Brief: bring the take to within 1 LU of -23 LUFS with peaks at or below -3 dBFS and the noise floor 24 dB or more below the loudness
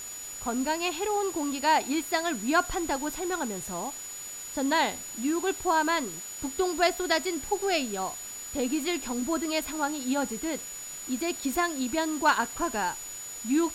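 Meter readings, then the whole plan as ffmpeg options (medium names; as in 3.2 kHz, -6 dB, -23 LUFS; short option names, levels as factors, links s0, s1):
steady tone 6.9 kHz; tone level -38 dBFS; noise floor -40 dBFS; noise floor target -53 dBFS; loudness -29.0 LUFS; peak level -12.0 dBFS; loudness target -23.0 LUFS
-> -af "bandreject=f=6900:w=30"
-af "afftdn=nr=13:nf=-40"
-af "volume=2"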